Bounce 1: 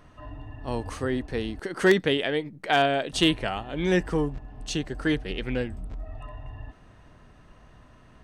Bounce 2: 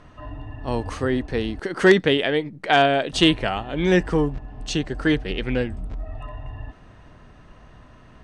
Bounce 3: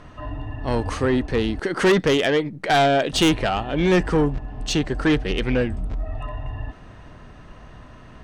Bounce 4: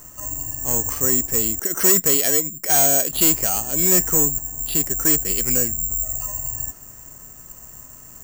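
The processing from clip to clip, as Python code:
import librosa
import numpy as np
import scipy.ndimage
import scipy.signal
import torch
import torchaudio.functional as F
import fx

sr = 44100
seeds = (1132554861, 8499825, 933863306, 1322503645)

y1 = scipy.signal.sosfilt(scipy.signal.bessel(2, 6800.0, 'lowpass', norm='mag', fs=sr, output='sos'), x)
y1 = y1 * librosa.db_to_amplitude(5.0)
y2 = 10.0 ** (-17.0 / 20.0) * np.tanh(y1 / 10.0 ** (-17.0 / 20.0))
y2 = y2 * librosa.db_to_amplitude(4.5)
y3 = (np.kron(scipy.signal.resample_poly(y2, 1, 6), np.eye(6)[0]) * 6)[:len(y2)]
y3 = y3 * librosa.db_to_amplitude(-6.5)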